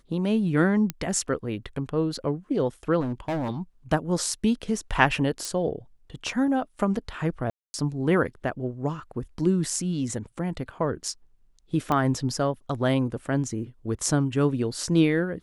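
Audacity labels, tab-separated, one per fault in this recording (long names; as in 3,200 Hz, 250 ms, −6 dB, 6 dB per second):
0.900000	0.900000	click −13 dBFS
3.000000	3.490000	clipping −24.5 dBFS
5.450000	5.450000	click
7.500000	7.740000	drop-out 240 ms
11.920000	11.920000	click −13 dBFS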